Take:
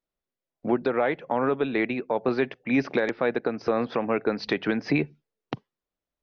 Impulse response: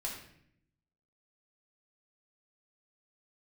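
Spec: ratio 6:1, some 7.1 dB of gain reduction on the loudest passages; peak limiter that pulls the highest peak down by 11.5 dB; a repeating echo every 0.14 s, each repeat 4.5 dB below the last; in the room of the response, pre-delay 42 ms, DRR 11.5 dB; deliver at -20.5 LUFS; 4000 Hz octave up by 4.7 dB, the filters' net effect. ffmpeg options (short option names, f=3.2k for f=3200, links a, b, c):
-filter_complex "[0:a]equalizer=f=4k:t=o:g=5.5,acompressor=threshold=-26dB:ratio=6,alimiter=level_in=0.5dB:limit=-24dB:level=0:latency=1,volume=-0.5dB,aecho=1:1:140|280|420|560|700|840|980|1120|1260:0.596|0.357|0.214|0.129|0.0772|0.0463|0.0278|0.0167|0.01,asplit=2[a][b];[1:a]atrim=start_sample=2205,adelay=42[c];[b][c]afir=irnorm=-1:irlink=0,volume=-12.5dB[d];[a][d]amix=inputs=2:normalize=0,volume=13dB"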